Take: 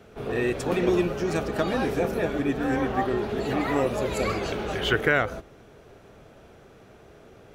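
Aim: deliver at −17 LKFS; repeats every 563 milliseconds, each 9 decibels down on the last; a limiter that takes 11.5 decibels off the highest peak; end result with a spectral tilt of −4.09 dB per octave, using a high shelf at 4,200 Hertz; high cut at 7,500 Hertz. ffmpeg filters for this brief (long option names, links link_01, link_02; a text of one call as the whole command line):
ffmpeg -i in.wav -af "lowpass=7500,highshelf=frequency=4200:gain=8,alimiter=limit=-19dB:level=0:latency=1,aecho=1:1:563|1126|1689|2252:0.355|0.124|0.0435|0.0152,volume=11.5dB" out.wav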